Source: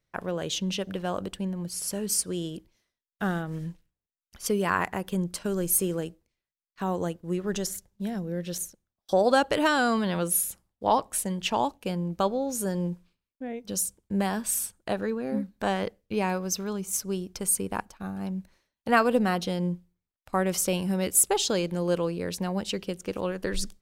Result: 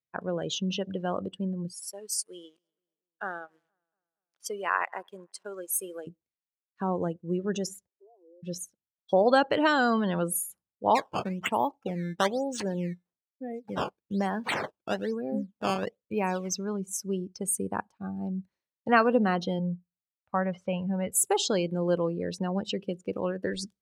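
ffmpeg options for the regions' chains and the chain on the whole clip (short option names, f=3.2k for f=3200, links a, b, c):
-filter_complex "[0:a]asettb=1/sr,asplit=3[a][b][c];[a]atrim=end=1.724[d];[b]atrim=start=1.72:end=6.07,asetpts=PTS-STARTPTS,afade=t=in:d=0.004:c=qsin,afade=t=out:st=4.346:d=0.004:c=qsin,highpass=590,aeval=exprs='sgn(val(0))*max(abs(val(0))-0.00316,0)':c=same,asplit=2[e][f];[f]adelay=235,lowpass=f=2.1k:p=1,volume=-22dB,asplit=2[g][h];[h]adelay=235,lowpass=f=2.1k:p=1,volume=0.54,asplit=2[i][j];[j]adelay=235,lowpass=f=2.1k:p=1,volume=0.54,asplit=2[k][l];[l]adelay=235,lowpass=f=2.1k:p=1,volume=0.54[m];[e][g][i][k][m]amix=inputs=5:normalize=0,atrim=end_sample=191835[n];[c]atrim=start=6.066[o];[d][n]acrossfade=d=0.004:c1=hsin:c2=qsin[p];[p][o]acrossfade=d=0.004:c1=qsin:c2=hsin,asettb=1/sr,asplit=3[q][r][s];[q]atrim=end=7.874[t];[r]atrim=start=7.87:end=8.43,asetpts=PTS-STARTPTS,afade=t=in:d=0.004:c=qsin,afade=t=out:st=0.556:d=0.004:c=qsin,asuperpass=centerf=560:order=20:qfactor=0.79,acompressor=threshold=-49dB:ratio=8:attack=3.2:release=140:knee=1:detection=peak[u];[s]atrim=start=8.426[v];[t][u]acrossfade=d=0.004:c1=hsin:c2=qsin[w];[w][v]acrossfade=d=0.004:c1=qsin:c2=hsin,asettb=1/sr,asplit=3[x][y][z];[x]atrim=end=10.954[aa];[y]atrim=start=10.95:end=16.5,asetpts=PTS-STARTPTS,afade=t=in:d=0.004:c=qsin,afade=t=out:st=5.546:d=0.004:c=qsin,acrusher=samples=13:mix=1:aa=0.000001:lfo=1:lforange=20.8:lforate=1.1,lowshelf=f=320:g=-3[ab];[z]atrim=start=16.496[ac];[aa][ab]acrossfade=d=0.004:c1=hsin:c2=qsin[ad];[ad][ac]acrossfade=d=0.004:c1=qsin:c2=hsin,asettb=1/sr,asplit=3[ae][af][ag];[ae]atrim=end=19.594[ah];[af]atrim=start=19.59:end=21.12,asetpts=PTS-STARTPTS,afade=t=in:d=0.004:c=qsin,afade=t=out:st=1.526:d=0.004:c=qsin,lowpass=2.4k,equalizer=f=330:w=2.7:g=-14.5[ai];[ag]atrim=start=21.116[aj];[ah][ai]acrossfade=d=0.004:c1=hsin:c2=qsin[ak];[ak][aj]acrossfade=d=0.004:c1=qsin:c2=hsin,highpass=97,afftdn=nr=19:nf=-36,highshelf=f=11k:g=-11"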